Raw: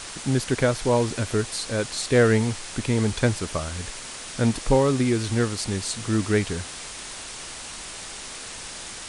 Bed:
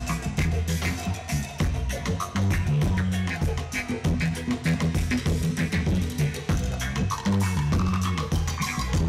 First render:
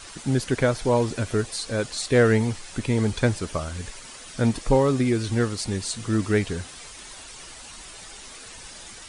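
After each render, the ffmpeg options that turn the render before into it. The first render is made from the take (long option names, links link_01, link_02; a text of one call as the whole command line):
ffmpeg -i in.wav -af "afftdn=noise_reduction=9:noise_floor=-38" out.wav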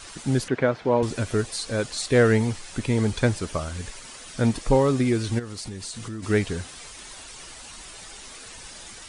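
ffmpeg -i in.wav -filter_complex "[0:a]asettb=1/sr,asplit=3[link_01][link_02][link_03];[link_01]atrim=end=0.484[link_04];[link_02]atrim=start=0.48:end=1.03,asetpts=PTS-STARTPTS,afade=type=in:duration=0.004:curve=qsin,afade=type=out:start_time=0.546:duration=0.004:curve=qsin,highpass=150,lowpass=2500[link_05];[link_03]atrim=start=1.026[link_06];[link_04][link_05]acrossfade=duration=0.004:curve1=hsin:curve2=qsin[link_07];[link_07][link_06]acrossfade=duration=0.004:curve1=qsin:curve2=hsin,asplit=3[link_08][link_09][link_10];[link_08]afade=type=out:start_time=5.38:duration=0.02[link_11];[link_09]acompressor=threshold=-31dB:ratio=6:attack=3.2:release=140:knee=1:detection=peak,afade=type=in:start_time=5.38:duration=0.02,afade=type=out:start_time=6.22:duration=0.02[link_12];[link_10]afade=type=in:start_time=6.22:duration=0.02[link_13];[link_11][link_12][link_13]amix=inputs=3:normalize=0" out.wav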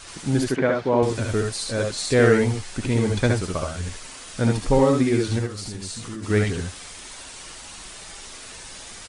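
ffmpeg -i in.wav -af "aecho=1:1:67|78:0.562|0.596" out.wav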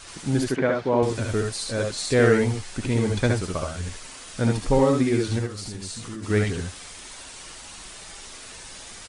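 ffmpeg -i in.wav -af "volume=-1.5dB" out.wav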